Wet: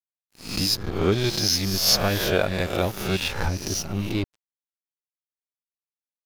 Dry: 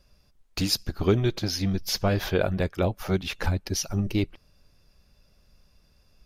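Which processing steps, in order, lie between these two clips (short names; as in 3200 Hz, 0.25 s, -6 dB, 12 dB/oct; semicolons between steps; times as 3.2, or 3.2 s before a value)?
spectral swells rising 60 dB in 0.86 s; 1.12–3.28 high shelf 2200 Hz +8.5 dB; crossover distortion -33.5 dBFS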